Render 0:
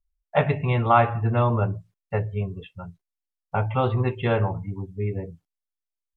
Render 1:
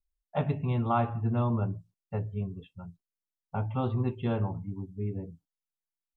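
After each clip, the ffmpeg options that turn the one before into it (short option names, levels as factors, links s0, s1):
-af "equalizer=f=250:t=o:w=1:g=7,equalizer=f=500:t=o:w=1:g=-5,equalizer=f=2000:t=o:w=1:g=-11,volume=0.447"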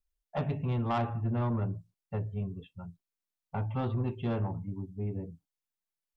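-af "asoftclip=type=tanh:threshold=0.0596"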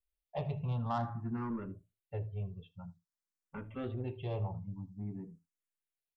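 -filter_complex "[0:a]aecho=1:1:78:0.0944,asplit=2[s0][s1];[s1]afreqshift=0.51[s2];[s0][s2]amix=inputs=2:normalize=1,volume=0.708"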